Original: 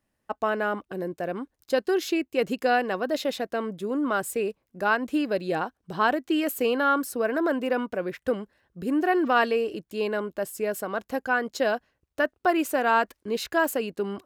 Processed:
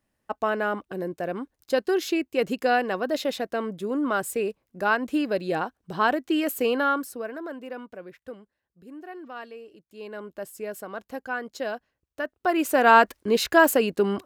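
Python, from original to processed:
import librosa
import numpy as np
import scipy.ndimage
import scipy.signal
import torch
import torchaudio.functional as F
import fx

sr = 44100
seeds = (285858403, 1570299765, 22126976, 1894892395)

y = fx.gain(x, sr, db=fx.line((6.81, 0.5), (7.42, -11.0), (7.94, -11.0), (8.81, -17.5), (9.77, -17.5), (10.32, -6.0), (12.24, -6.0), (12.88, 6.5)))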